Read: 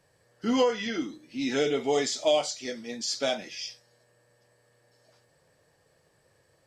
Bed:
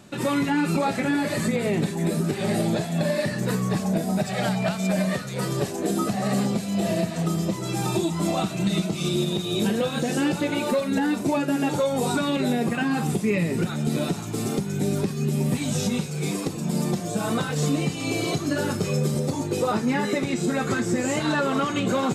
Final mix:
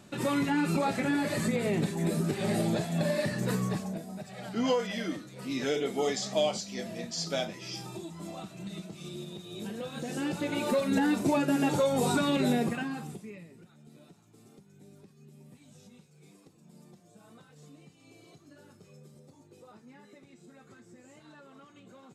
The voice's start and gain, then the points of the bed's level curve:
4.10 s, −4.0 dB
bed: 0:03.64 −5 dB
0:04.09 −17 dB
0:09.52 −17 dB
0:10.87 −3 dB
0:12.57 −3 dB
0:13.61 −30 dB

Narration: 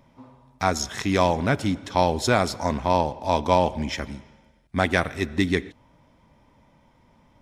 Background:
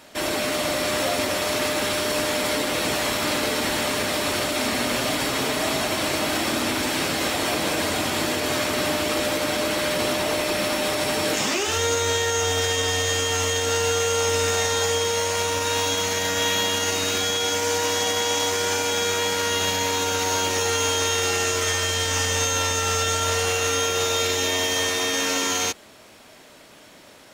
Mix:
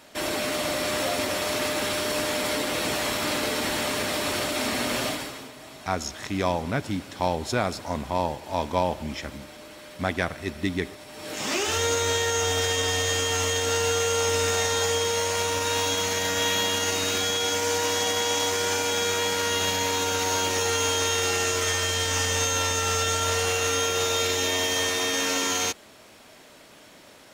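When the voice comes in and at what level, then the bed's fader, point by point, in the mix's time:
5.25 s, −5.0 dB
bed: 0:05.06 −3 dB
0:05.52 −20.5 dB
0:11.09 −20.5 dB
0:11.55 −2 dB

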